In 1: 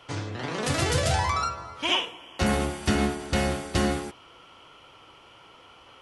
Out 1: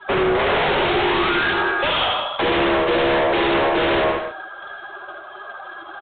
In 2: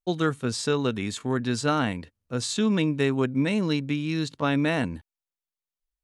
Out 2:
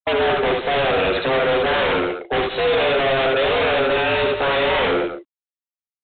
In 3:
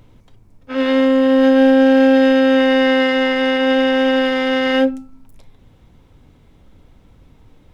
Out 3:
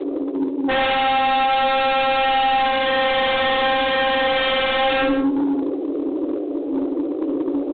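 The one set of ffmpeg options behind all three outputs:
-filter_complex "[0:a]areverse,acompressor=threshold=-21dB:ratio=12,areverse,highshelf=f=2.3k:g=-8.5,afftdn=nr=31:nf=-47,afreqshift=270,asplit=2[a][b];[b]aeval=exprs='0.168*sin(PI/2*8.91*val(0)/0.168)':c=same,volume=-10dB[c];[a][c]amix=inputs=2:normalize=0,aecho=1:1:70|82|179|214:0.668|0.282|0.266|0.126,asoftclip=type=tanh:threshold=-23dB,volume=9dB" -ar 8000 -c:a adpcm_g726 -b:a 24k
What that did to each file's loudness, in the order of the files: +8.5, +7.5, -5.5 LU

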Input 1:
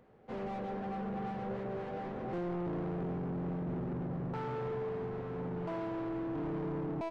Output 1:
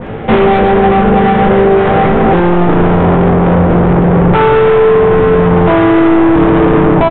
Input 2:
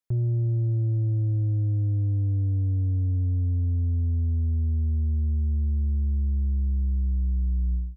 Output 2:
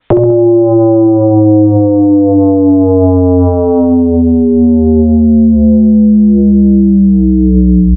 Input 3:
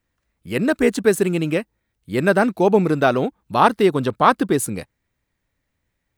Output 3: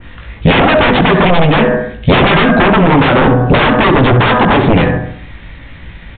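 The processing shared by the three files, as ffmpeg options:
-filter_complex "[0:a]equalizer=f=490:w=0.32:g=-7.5,asplit=2[a][b];[b]adelay=18,volume=-4dB[c];[a][c]amix=inputs=2:normalize=0,bandreject=f=123.5:t=h:w=4,bandreject=f=247:t=h:w=4,bandreject=f=370.5:t=h:w=4,bandreject=f=494:t=h:w=4,bandreject=f=617.5:t=h:w=4,bandreject=f=741:t=h:w=4,bandreject=f=864.5:t=h:w=4,bandreject=f=988:t=h:w=4,bandreject=f=1.1115k:t=h:w=4,bandreject=f=1.235k:t=h:w=4,bandreject=f=1.3585k:t=h:w=4,bandreject=f=1.482k:t=h:w=4,bandreject=f=1.6055k:t=h:w=4,bandreject=f=1.729k:t=h:w=4,bandreject=f=1.8525k:t=h:w=4,bandreject=f=1.976k:t=h:w=4,acompressor=threshold=-32dB:ratio=16,aresample=16000,aeval=exprs='0.0631*sin(PI/2*5.62*val(0)/0.0631)':c=same,aresample=44100,aresample=8000,aresample=44100,asplit=2[d][e];[e]adelay=66,lowpass=f=1.3k:p=1,volume=-7dB,asplit=2[f][g];[g]adelay=66,lowpass=f=1.3k:p=1,volume=0.55,asplit=2[h][i];[i]adelay=66,lowpass=f=1.3k:p=1,volume=0.55,asplit=2[j][k];[k]adelay=66,lowpass=f=1.3k:p=1,volume=0.55,asplit=2[l][m];[m]adelay=66,lowpass=f=1.3k:p=1,volume=0.55,asplit=2[n][o];[o]adelay=66,lowpass=f=1.3k:p=1,volume=0.55,asplit=2[p][q];[q]adelay=66,lowpass=f=1.3k:p=1,volume=0.55[r];[d][f][h][j][l][n][p][r]amix=inputs=8:normalize=0,alimiter=level_in=26dB:limit=-1dB:release=50:level=0:latency=1,adynamicequalizer=threshold=0.0631:dfrequency=2200:dqfactor=0.7:tfrequency=2200:tqfactor=0.7:attack=5:release=100:ratio=0.375:range=2.5:mode=cutabove:tftype=highshelf,volume=-1dB"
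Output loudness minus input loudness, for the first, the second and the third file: +30.0, +18.0, +9.5 LU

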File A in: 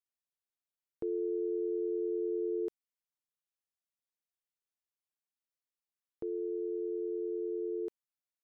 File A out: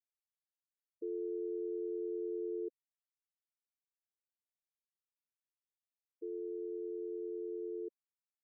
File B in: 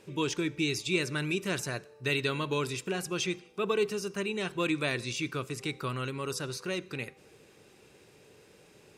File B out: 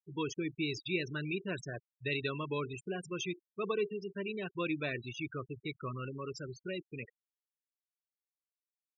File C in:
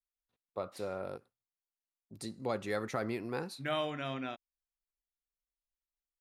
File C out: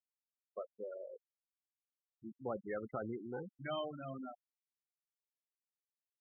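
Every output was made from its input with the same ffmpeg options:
-af "afftfilt=real='re*gte(hypot(re,im),0.0398)':imag='im*gte(hypot(re,im),0.0398)':win_size=1024:overlap=0.75,volume=-5dB"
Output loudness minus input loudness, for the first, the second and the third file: -5.0, -6.0, -6.0 LU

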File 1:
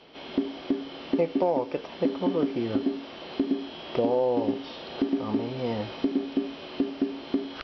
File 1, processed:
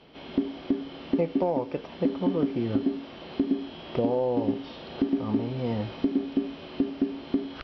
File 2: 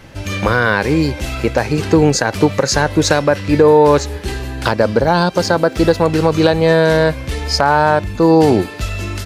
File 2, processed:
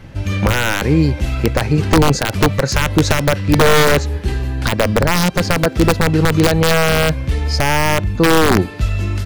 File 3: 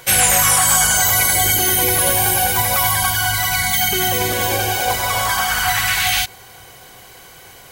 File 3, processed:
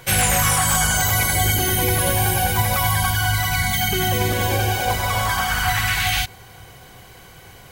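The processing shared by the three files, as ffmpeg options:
-af "aeval=exprs='(mod(1.5*val(0)+1,2)-1)/1.5':c=same,bass=f=250:g=8,treble=f=4k:g=-4,volume=-2.5dB"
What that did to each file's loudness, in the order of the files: 0.0, -1.0, -4.0 LU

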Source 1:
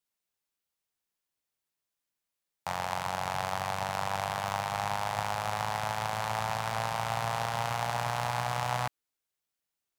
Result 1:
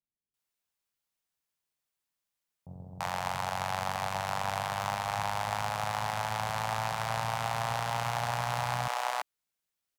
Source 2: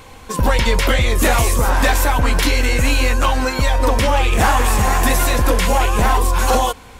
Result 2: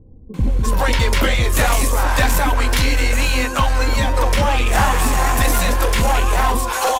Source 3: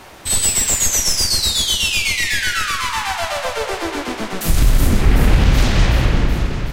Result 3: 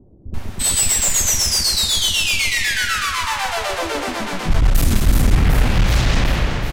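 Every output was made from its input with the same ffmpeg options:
-filter_complex "[0:a]acrossover=split=370[a][b];[b]adelay=340[c];[a][c]amix=inputs=2:normalize=0,aeval=exprs='clip(val(0),-1,0.266)':c=same"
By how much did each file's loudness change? -0.5, -1.0, -0.5 LU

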